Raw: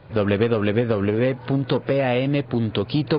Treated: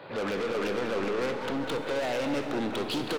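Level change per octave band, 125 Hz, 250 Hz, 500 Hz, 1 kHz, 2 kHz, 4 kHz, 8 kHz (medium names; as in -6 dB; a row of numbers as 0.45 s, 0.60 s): -19.5 dB, -10.0 dB, -8.0 dB, -3.5 dB, -4.5 dB, -4.0 dB, no reading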